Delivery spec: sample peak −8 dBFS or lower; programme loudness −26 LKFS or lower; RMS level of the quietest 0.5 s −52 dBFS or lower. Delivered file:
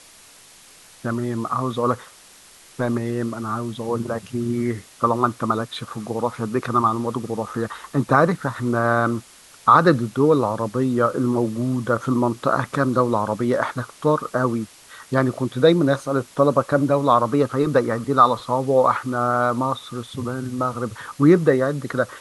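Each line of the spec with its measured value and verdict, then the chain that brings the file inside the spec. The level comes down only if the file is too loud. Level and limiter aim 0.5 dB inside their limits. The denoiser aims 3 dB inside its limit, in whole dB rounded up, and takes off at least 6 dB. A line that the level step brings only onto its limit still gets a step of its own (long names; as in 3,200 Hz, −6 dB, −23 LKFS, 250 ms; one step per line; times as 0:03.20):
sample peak −2.5 dBFS: out of spec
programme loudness −21.0 LKFS: out of spec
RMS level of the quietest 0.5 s −48 dBFS: out of spec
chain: level −5.5 dB
brickwall limiter −8.5 dBFS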